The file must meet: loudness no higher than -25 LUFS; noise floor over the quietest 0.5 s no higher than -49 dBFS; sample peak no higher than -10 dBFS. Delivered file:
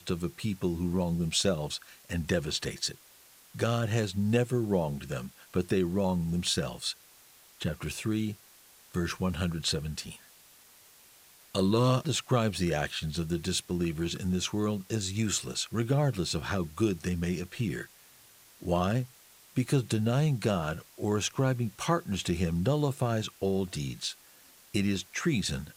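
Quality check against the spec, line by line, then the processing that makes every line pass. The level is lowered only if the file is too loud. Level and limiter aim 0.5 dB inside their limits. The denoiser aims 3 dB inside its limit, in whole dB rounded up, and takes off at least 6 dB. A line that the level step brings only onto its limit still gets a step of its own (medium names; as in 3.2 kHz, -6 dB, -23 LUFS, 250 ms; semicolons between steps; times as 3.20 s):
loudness -30.5 LUFS: pass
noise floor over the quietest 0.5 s -57 dBFS: pass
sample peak -12.5 dBFS: pass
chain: none needed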